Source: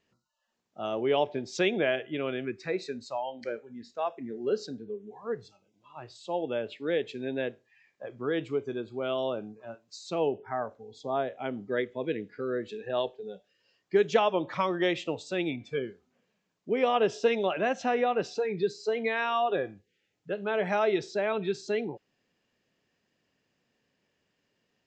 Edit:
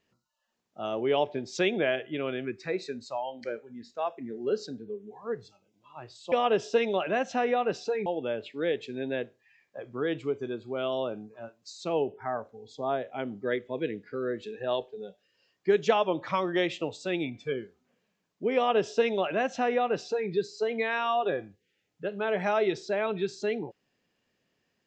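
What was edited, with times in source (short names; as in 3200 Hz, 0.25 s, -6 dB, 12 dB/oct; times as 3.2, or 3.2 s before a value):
16.82–18.56 copy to 6.32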